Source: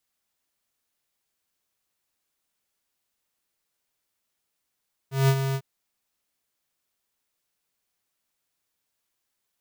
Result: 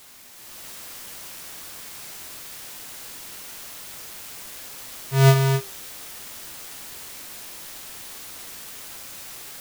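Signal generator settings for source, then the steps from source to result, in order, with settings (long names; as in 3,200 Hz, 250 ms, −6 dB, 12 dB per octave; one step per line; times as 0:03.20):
note with an ADSR envelope square 135 Hz, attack 175 ms, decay 62 ms, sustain −8.5 dB, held 0.44 s, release 60 ms −17.5 dBFS
in parallel at −7.5 dB: bit-depth reduction 6 bits, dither triangular
on the sum: flanger 0.21 Hz, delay 7.3 ms, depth 7.3 ms, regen +78%
automatic gain control gain up to 9 dB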